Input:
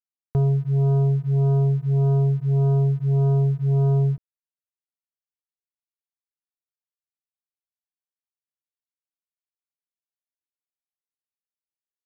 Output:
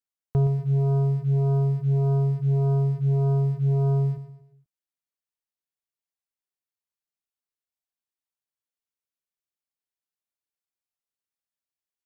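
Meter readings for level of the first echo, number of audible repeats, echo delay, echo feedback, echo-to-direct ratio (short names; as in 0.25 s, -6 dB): -11.0 dB, 4, 0.12 s, 40%, -10.0 dB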